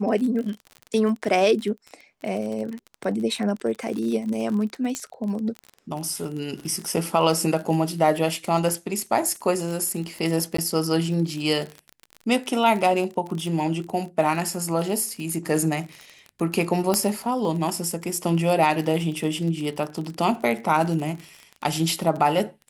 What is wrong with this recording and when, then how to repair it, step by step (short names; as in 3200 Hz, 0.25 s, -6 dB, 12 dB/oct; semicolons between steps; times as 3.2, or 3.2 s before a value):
crackle 34/s -29 dBFS
4.95 pop -14 dBFS
10.57–10.58 gap 14 ms
16.94 pop -7 dBFS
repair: de-click; interpolate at 10.57, 14 ms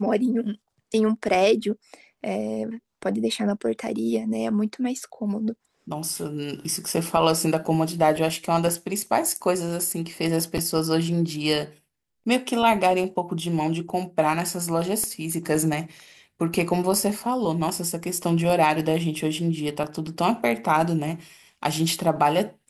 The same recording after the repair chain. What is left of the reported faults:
16.94 pop